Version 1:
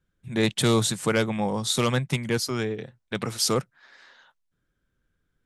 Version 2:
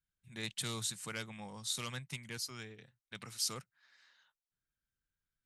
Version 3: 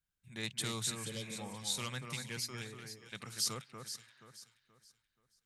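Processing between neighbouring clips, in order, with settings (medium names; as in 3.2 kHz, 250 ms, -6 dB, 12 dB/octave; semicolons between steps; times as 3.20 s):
amplifier tone stack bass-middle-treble 5-5-5; band-stop 3.4 kHz, Q 22; trim -4 dB
spectral replace 0.98–1.30 s, 590–2900 Hz; echo whose repeats swap between lows and highs 239 ms, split 2.1 kHz, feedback 56%, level -5 dB; trim +1 dB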